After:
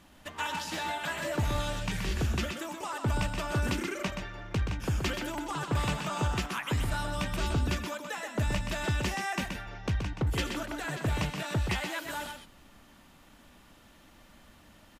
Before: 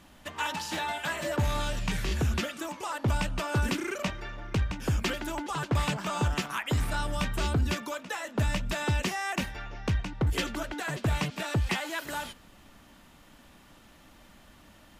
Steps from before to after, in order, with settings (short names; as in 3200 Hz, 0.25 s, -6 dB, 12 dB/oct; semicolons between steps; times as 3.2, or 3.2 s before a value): echo 0.126 s -6 dB; gain -2.5 dB